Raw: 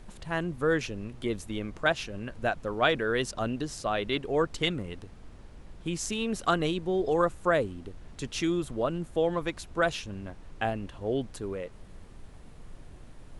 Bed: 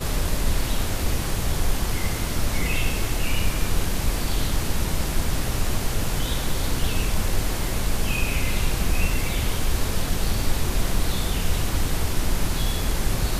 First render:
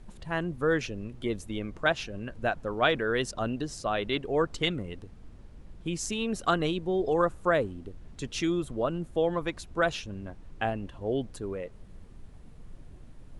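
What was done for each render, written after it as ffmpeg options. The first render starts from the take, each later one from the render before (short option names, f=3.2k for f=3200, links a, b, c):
-af "afftdn=nr=6:nf=-49"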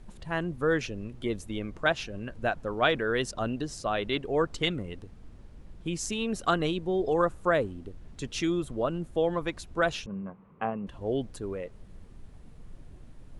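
-filter_complex "[0:a]asettb=1/sr,asplit=3[a][b][c];[a]atrim=end=10.064[d];[b]atrim=start=10.06:end=10.87,asetpts=PTS-STARTPTS,afade=t=in:d=0.004:c=qsin,afade=t=out:st=0.806:d=0.004:c=qsin,highpass=170,equalizer=f=190:t=q:w=4:g=9,equalizer=f=310:t=q:w=4:g=-9,equalizer=f=460:t=q:w=4:g=4,equalizer=f=670:t=q:w=4:g=-4,equalizer=f=1.1k:t=q:w=4:g=9,equalizer=f=1.7k:t=q:w=4:g=-8,lowpass=f=2.2k:w=0.5412,lowpass=f=2.2k:w=1.3066[e];[c]atrim=start=10.866[f];[d][e]acrossfade=d=0.004:c1=hsin:c2=qsin[g];[g][f]acrossfade=d=0.004:c1=qsin:c2=hsin"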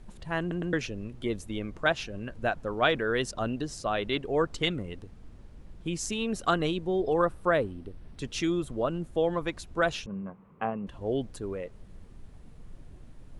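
-filter_complex "[0:a]asettb=1/sr,asplit=3[a][b][c];[a]atrim=end=7.014[d];[b]atrim=start=7.01:end=8.22,asetpts=PTS-STARTPTS,afade=t=in:d=0.004:c=qsin,afade=t=out:st=1.206:d=0.004:c=qsin,equalizer=f=6.9k:w=4.8:g=-11[e];[c]atrim=start=8.216[f];[d][e]acrossfade=d=0.004:c1=hsin:c2=qsin[g];[g][f]acrossfade=d=0.004:c1=qsin:c2=hsin,asplit=4[h][i][j][k];[h]atrim=end=0.512[l];[i]atrim=start=0.398:end=0.512[m];[j]atrim=start=0.398:end=0.512[n];[k]atrim=start=0.728[o];[l][m]acrossfade=d=0.004:c1=hsin:c2=hsin[p];[p][n]acrossfade=d=0.004:c1=hsin:c2=hsin[q];[q][o]acrossfade=d=0.004:c1=hsin:c2=hsin"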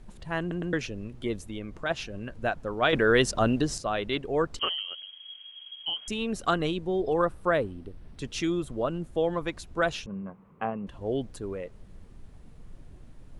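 -filter_complex "[0:a]asplit=3[a][b][c];[a]afade=t=out:st=1.39:d=0.02[d];[b]acompressor=threshold=-36dB:ratio=1.5:attack=3.2:release=140:knee=1:detection=peak,afade=t=in:st=1.39:d=0.02,afade=t=out:st=1.89:d=0.02[e];[c]afade=t=in:st=1.89:d=0.02[f];[d][e][f]amix=inputs=3:normalize=0,asettb=1/sr,asplit=3[g][h][i];[g]atrim=end=4.594[j];[h]atrim=start=4.59:end=6.08,asetpts=PTS-STARTPTS,afade=t=in:d=0.004:c=qsin,afade=t=out:st=1.486:d=0.004:c=qsin,lowpass=f=2.8k:t=q:w=0.5098,lowpass=f=2.8k:t=q:w=0.6013,lowpass=f=2.8k:t=q:w=0.9,lowpass=f=2.8k:t=q:w=2.563,afreqshift=-3300[k];[i]atrim=start=6.076[l];[j][k]acrossfade=d=0.004:c1=hsin:c2=qsin[m];[m][l]acrossfade=d=0.004:c1=qsin:c2=hsin,asplit=3[n][o][p];[n]atrim=end=2.932[q];[o]atrim=start=2.928:end=3.782,asetpts=PTS-STARTPTS,volume=7dB[r];[p]atrim=start=3.778[s];[q][r]acrossfade=d=0.004:c1=hsin:c2=hsin[t];[t][s]acrossfade=d=0.004:c1=hsin:c2=hsin"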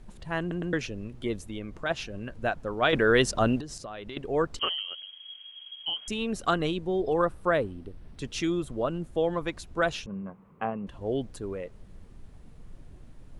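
-filter_complex "[0:a]asettb=1/sr,asplit=3[a][b][c];[a]atrim=end=3.604[d];[b]atrim=start=3.6:end=4.17,asetpts=PTS-STARTPTS,afade=t=in:d=0.004:c=qsin,afade=t=out:st=0.566:d=0.004:c=qsin,acompressor=threshold=-36dB:ratio=6:attack=3.2:release=140:knee=1:detection=peak[e];[c]atrim=start=4.166[f];[d][e]acrossfade=d=0.004:c1=hsin:c2=qsin[g];[g][f]acrossfade=d=0.004:c1=qsin:c2=hsin"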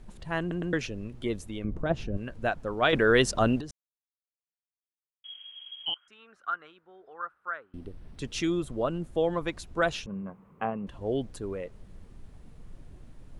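-filter_complex "[0:a]asettb=1/sr,asplit=3[a][b][c];[a]atrim=end=1.644[d];[b]atrim=start=1.64:end=2.17,asetpts=PTS-STARTPTS,afade=t=in:d=0.004:c=qsin,afade=t=out:st=0.526:d=0.004:c=qsin,tiltshelf=f=750:g=10[e];[c]atrim=start=2.166[f];[d][e]acrossfade=d=0.004:c1=hsin:c2=qsin[g];[g][f]acrossfade=d=0.004:c1=qsin:c2=hsin,asettb=1/sr,asplit=3[h][i][j];[h]atrim=end=5.944[k];[i]atrim=start=5.94:end=7.74,asetpts=PTS-STARTPTS,afade=t=in:d=0.004:c=qsin,afade=t=out:st=1.796:d=0.004:c=qsin,bandpass=f=1.4k:t=q:w=6.3[l];[j]atrim=start=7.736[m];[k][l]acrossfade=d=0.004:c1=hsin:c2=qsin[n];[n][m]acrossfade=d=0.004:c1=qsin:c2=hsin,asplit=3[o][p][q];[o]atrim=end=3.71,asetpts=PTS-STARTPTS,afade=t=out:st=3.706:d=0.004:c=hsin[r];[p]atrim=start=3.71:end=5.24,asetpts=PTS-STARTPTS,volume=0[s];[q]atrim=start=5.24,asetpts=PTS-STARTPTS,afade=t=in:d=0.004:c=hsin[t];[r][s][t]concat=n=3:v=0:a=1"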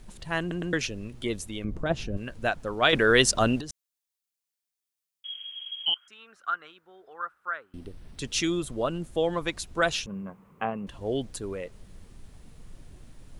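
-af "highshelf=f=2.5k:g=10"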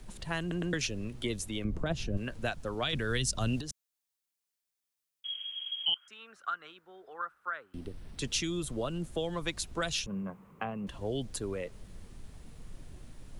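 -filter_complex "[0:a]acrossover=split=170|3000[a][b][c];[b]acompressor=threshold=-33dB:ratio=4[d];[a][d][c]amix=inputs=3:normalize=0,acrossover=split=250[e][f];[f]alimiter=limit=-20dB:level=0:latency=1:release=281[g];[e][g]amix=inputs=2:normalize=0"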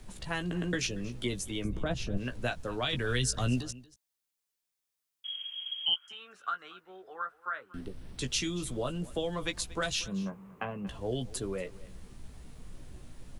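-filter_complex "[0:a]asplit=2[a][b];[b]adelay=16,volume=-7dB[c];[a][c]amix=inputs=2:normalize=0,aecho=1:1:234:0.1"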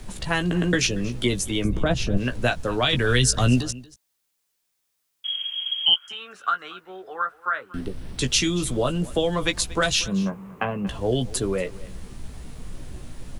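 -af "volume=10.5dB"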